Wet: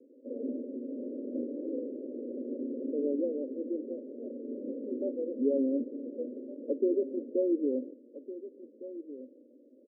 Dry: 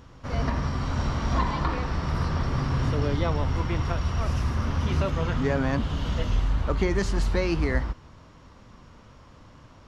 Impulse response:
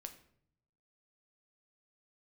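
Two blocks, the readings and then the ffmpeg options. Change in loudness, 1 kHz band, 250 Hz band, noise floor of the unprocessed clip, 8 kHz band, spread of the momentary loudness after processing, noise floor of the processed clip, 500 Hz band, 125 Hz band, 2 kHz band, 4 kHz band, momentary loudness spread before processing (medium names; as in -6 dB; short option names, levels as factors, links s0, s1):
-7.5 dB, under -40 dB, -2.0 dB, -51 dBFS, no reading, 15 LU, -58 dBFS, -0.5 dB, under -40 dB, under -40 dB, under -40 dB, 4 LU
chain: -filter_complex "[0:a]asuperpass=centerf=370:order=20:qfactor=1.1,asplit=2[s0][s1];[s1]adelay=1458,volume=0.2,highshelf=f=4000:g=-32.8[s2];[s0][s2]amix=inputs=2:normalize=0"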